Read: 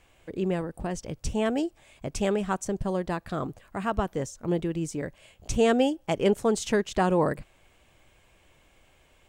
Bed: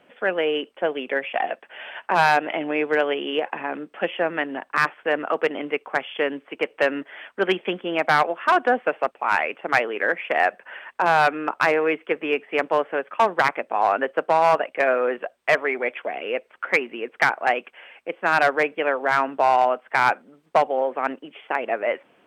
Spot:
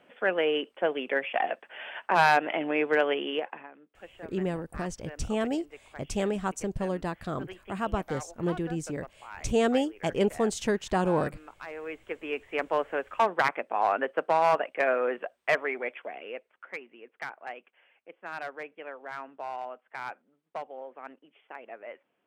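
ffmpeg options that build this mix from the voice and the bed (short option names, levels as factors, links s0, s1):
-filter_complex "[0:a]adelay=3950,volume=0.75[s0];[1:a]volume=5.01,afade=t=out:st=3.2:d=0.51:silence=0.105925,afade=t=in:st=11.66:d=1.24:silence=0.133352,afade=t=out:st=15.4:d=1.29:silence=0.211349[s1];[s0][s1]amix=inputs=2:normalize=0"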